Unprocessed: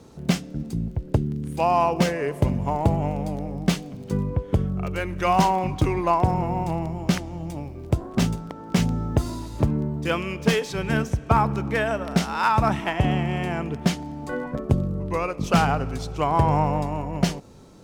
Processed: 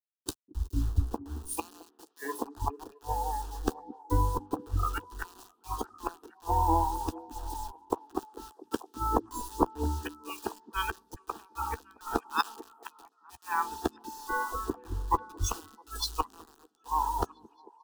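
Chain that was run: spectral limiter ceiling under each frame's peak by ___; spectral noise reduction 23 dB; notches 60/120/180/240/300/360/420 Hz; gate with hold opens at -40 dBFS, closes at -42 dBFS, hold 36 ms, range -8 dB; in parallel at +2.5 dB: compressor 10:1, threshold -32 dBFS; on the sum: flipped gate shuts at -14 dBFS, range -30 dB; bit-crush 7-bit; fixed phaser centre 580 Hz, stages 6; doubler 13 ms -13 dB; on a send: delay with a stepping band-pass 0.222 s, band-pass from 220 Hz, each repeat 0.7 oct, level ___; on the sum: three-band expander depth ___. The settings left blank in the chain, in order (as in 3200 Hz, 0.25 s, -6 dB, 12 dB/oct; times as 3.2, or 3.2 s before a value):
15 dB, -6 dB, 70%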